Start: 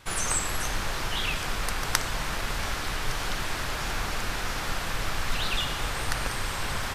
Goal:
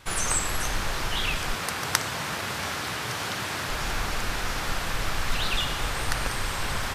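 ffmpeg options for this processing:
ffmpeg -i in.wav -filter_complex "[0:a]asettb=1/sr,asplit=3[link_01][link_02][link_03];[link_01]atrim=end=1.544[link_04];[link_02]atrim=start=1.54:end=3.7,asetpts=PTS-STARTPTS,afade=type=in:duration=0.004:curve=qsin,afade=type=out:start_time=2.156:duration=0.004:curve=qsin,highpass=frequency=89:width=0.5412,highpass=frequency=89:width=1.3066[link_05];[link_03]atrim=start=3.696[link_06];[link_04][link_05]acrossfade=duration=0.004:curve1=hsin:curve2=qsin[link_07];[link_07][link_06]acrossfade=duration=0.004:curve1=qsin:curve2=hsin,volume=1.5dB" out.wav

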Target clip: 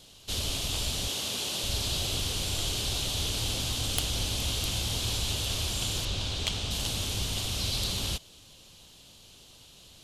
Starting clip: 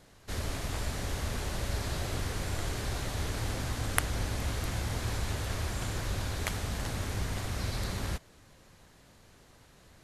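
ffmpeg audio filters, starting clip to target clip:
ffmpeg -i in.wav -filter_complex "[0:a]asettb=1/sr,asplit=3[link_01][link_02][link_03];[link_01]atrim=end=1.084[link_04];[link_02]atrim=start=1.08:end=1.64,asetpts=PTS-STARTPTS,afade=type=in:duration=0.004:curve=qsin,afade=type=out:start_time=0.556:duration=0.004:curve=qsin,highpass=190[link_05];[link_03]atrim=start=1.636[link_06];[link_04][link_05]acrossfade=duration=0.004:curve1=hsin:curve2=qsin[link_07];[link_07][link_06]acrossfade=duration=0.004:curve1=qsin:curve2=hsin,asettb=1/sr,asplit=3[link_08][link_09][link_10];[link_08]atrim=end=6.054[link_11];[link_09]atrim=start=6.05:end=6.71,asetpts=PTS-STARTPTS,afade=type=in:duration=0.004:curve=qsin,afade=type=out:start_time=0.656:duration=0.004:curve=qsin,adynamicsmooth=sensitivity=2.5:basefreq=6600[link_12];[link_10]atrim=start=6.706[link_13];[link_11][link_12]acrossfade=duration=0.004:curve1=hsin:curve2=qsin[link_14];[link_14][link_13]acrossfade=duration=0.004:curve1=qsin:curve2=hsin,highshelf=frequency=2400:width_type=q:width=3:gain=8.5,asoftclip=type=tanh:threshold=-15dB" out.wav

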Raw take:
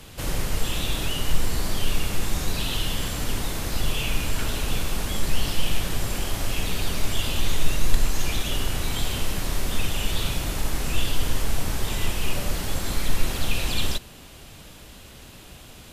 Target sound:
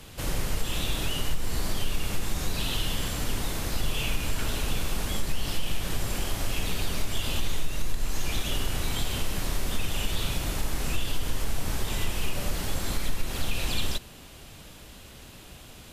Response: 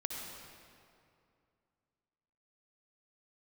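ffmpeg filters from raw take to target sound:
-af "acompressor=threshold=-18dB:ratio=4,volume=-2dB"

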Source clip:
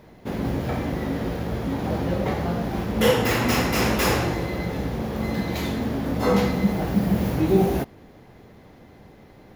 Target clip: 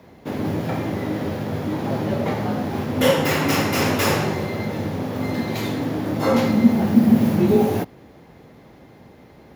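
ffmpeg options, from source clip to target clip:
ffmpeg -i in.wav -filter_complex "[0:a]asettb=1/sr,asplit=3[link_01][link_02][link_03];[link_01]atrim=end=6.484[link_04];[link_02]atrim=start=6.48:end=7.51,asetpts=PTS-STARTPTS,afade=type=in:duration=0.004:curve=qsin,afade=type=out:start_time=1.026:duration=0.004:curve=qsin,equalizer=frequency=170:width_type=o:width=0.49:gain=9.5[link_05];[link_03]atrim=start=7.506[link_06];[link_04][link_05]acrossfade=duration=0.004:curve1=hsin:curve2=qsin[link_07];[link_07][link_06]acrossfade=duration=0.004:curve1=qsin:curve2=hsin,afreqshift=37,volume=1.5dB" out.wav

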